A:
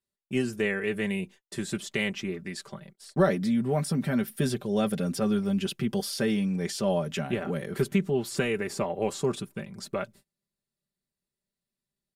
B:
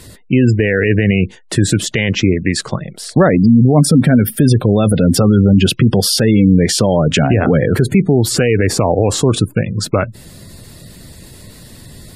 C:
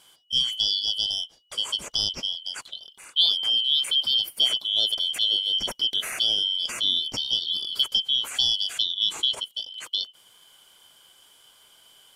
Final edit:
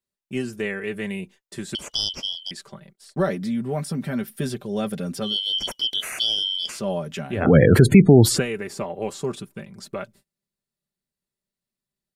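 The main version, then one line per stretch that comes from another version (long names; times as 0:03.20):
A
0:01.75–0:02.51: punch in from C
0:05.29–0:06.73: punch in from C, crossfade 0.16 s
0:07.46–0:08.34: punch in from B, crossfade 0.24 s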